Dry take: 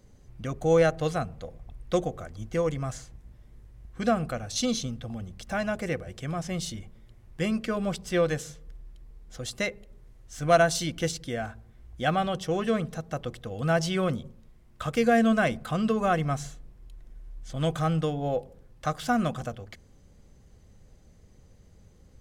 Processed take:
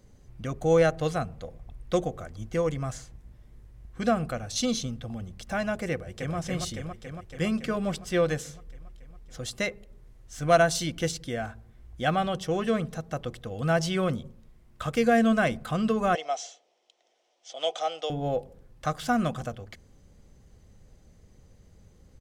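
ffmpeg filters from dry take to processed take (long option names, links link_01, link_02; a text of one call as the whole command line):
ffmpeg -i in.wav -filter_complex "[0:a]asplit=2[link_01][link_02];[link_02]afade=type=in:start_time=5.92:duration=0.01,afade=type=out:start_time=6.36:duration=0.01,aecho=0:1:280|560|840|1120|1400|1680|1960|2240|2520|2800|3080|3360:0.707946|0.530959|0.39822|0.298665|0.223998|0.167999|0.125999|0.0944994|0.0708745|0.0531559|0.0398669|0.0299002[link_03];[link_01][link_03]amix=inputs=2:normalize=0,asettb=1/sr,asplit=3[link_04][link_05][link_06];[link_04]atrim=end=16.154[link_07];[link_05]atrim=start=16.15:end=18.1,asetpts=PTS-STARTPTS,afade=type=in:duration=0.004:curve=qsin,afade=type=out:start_time=1.946:duration=0.004:curve=qsin,highpass=frequency=480:width=0.5412,highpass=frequency=480:width=1.3066,equalizer=frequency=710:width_type=q:width=4:gain=7,equalizer=frequency=1100:width_type=q:width=4:gain=-8,equalizer=frequency=1600:width_type=q:width=4:gain=-10,equalizer=frequency=3200:width_type=q:width=4:gain=8,equalizer=frequency=5700:width_type=q:width=4:gain=7,lowpass=frequency=7300:width=0.5412,lowpass=frequency=7300:width=1.3066[link_08];[link_06]atrim=start=18.096[link_09];[link_07][link_08]acrossfade=duration=0.004:curve1=hsin:curve2=qsin[link_10];[link_10][link_09]acrossfade=duration=0.004:curve1=qsin:curve2=hsin" out.wav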